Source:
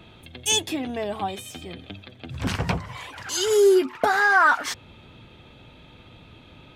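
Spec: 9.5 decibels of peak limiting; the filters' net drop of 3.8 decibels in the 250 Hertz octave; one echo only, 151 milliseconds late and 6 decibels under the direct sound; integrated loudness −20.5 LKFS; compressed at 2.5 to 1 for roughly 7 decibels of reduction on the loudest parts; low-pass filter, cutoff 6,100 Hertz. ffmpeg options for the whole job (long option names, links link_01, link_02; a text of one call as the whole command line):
ffmpeg -i in.wav -af "lowpass=6100,equalizer=frequency=250:width_type=o:gain=-7,acompressor=threshold=-25dB:ratio=2.5,alimiter=limit=-22.5dB:level=0:latency=1,aecho=1:1:151:0.501,volume=11dB" out.wav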